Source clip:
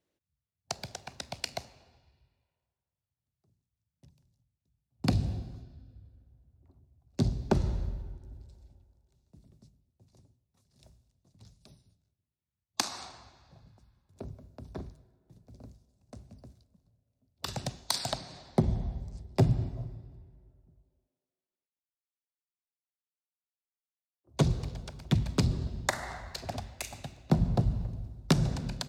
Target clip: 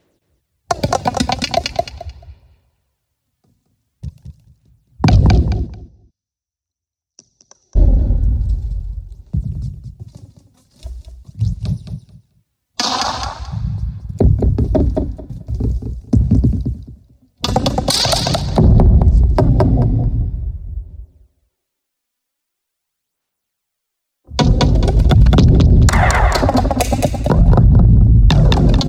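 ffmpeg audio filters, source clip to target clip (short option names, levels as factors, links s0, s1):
-filter_complex "[0:a]afwtdn=0.00794,acompressor=threshold=0.00794:ratio=3,aphaser=in_gain=1:out_gain=1:delay=4.1:decay=0.54:speed=0.43:type=sinusoidal,asplit=3[s0][s1][s2];[s0]afade=t=out:st=5.44:d=0.02[s3];[s1]bandpass=f=5900:t=q:w=17:csg=0,afade=t=in:st=5.44:d=0.02,afade=t=out:st=7.75:d=0.02[s4];[s2]afade=t=in:st=7.75:d=0.02[s5];[s3][s4][s5]amix=inputs=3:normalize=0,aecho=1:1:218|436|654:0.447|0.0759|0.0129,alimiter=level_in=50.1:limit=0.891:release=50:level=0:latency=1,volume=0.891"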